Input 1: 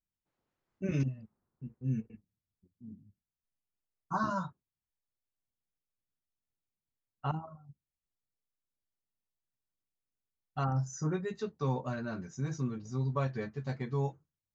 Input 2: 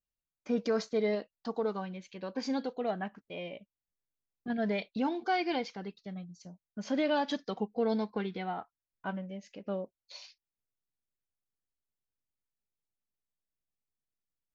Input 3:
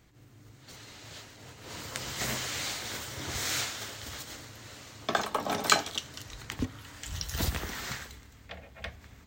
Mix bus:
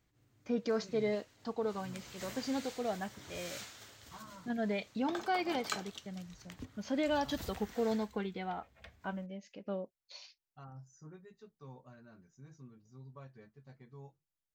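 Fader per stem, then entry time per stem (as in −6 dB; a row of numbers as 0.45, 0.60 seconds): −19.5, −3.0, −14.5 decibels; 0.00, 0.00, 0.00 seconds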